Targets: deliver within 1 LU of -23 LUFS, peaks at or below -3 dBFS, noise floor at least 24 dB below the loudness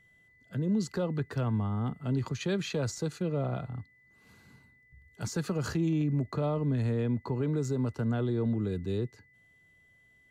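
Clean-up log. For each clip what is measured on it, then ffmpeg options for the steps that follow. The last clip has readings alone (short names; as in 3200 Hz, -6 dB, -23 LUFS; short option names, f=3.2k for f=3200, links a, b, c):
steady tone 2000 Hz; tone level -61 dBFS; loudness -31.5 LUFS; peak -20.5 dBFS; loudness target -23.0 LUFS
-> -af "bandreject=f=2k:w=30"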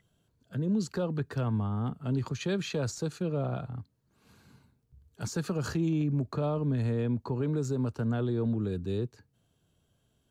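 steady tone none; loudness -31.5 LUFS; peak -20.5 dBFS; loudness target -23.0 LUFS
-> -af "volume=8.5dB"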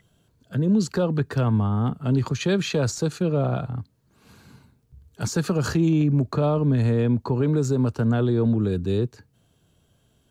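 loudness -23.0 LUFS; peak -12.0 dBFS; noise floor -65 dBFS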